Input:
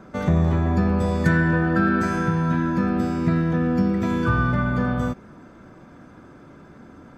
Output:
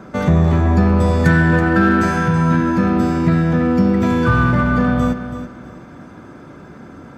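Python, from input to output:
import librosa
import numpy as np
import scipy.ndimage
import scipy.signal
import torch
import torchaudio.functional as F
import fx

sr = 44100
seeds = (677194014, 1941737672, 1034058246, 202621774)

p1 = scipy.signal.sosfilt(scipy.signal.butter(2, 45.0, 'highpass', fs=sr, output='sos'), x)
p2 = np.clip(10.0 ** (23.5 / 20.0) * p1, -1.0, 1.0) / 10.0 ** (23.5 / 20.0)
p3 = p1 + F.gain(torch.from_numpy(p2), -8.0).numpy()
p4 = fx.echo_feedback(p3, sr, ms=328, feedback_pct=26, wet_db=-11.0)
y = F.gain(torch.from_numpy(p4), 4.5).numpy()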